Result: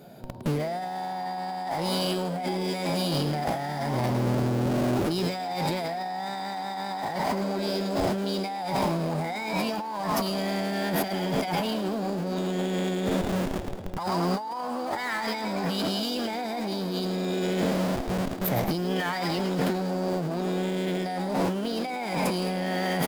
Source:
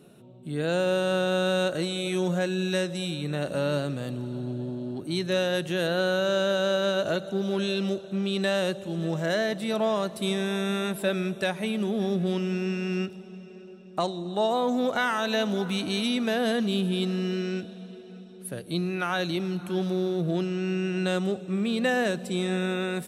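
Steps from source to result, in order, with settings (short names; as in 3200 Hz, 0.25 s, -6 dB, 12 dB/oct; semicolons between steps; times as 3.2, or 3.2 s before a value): comb 1.3 ms, depth 53%; in parallel at -7 dB: Schmitt trigger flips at -41.5 dBFS; on the sum: bell 460 Hz +4.5 dB 1.6 oct; formant shift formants +4 st; on a send: frequency-shifting echo 0.108 s, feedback 49%, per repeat +82 Hz, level -9 dB; on the sum: negative-ratio compressor -27 dBFS, ratio -1; gain -1.5 dB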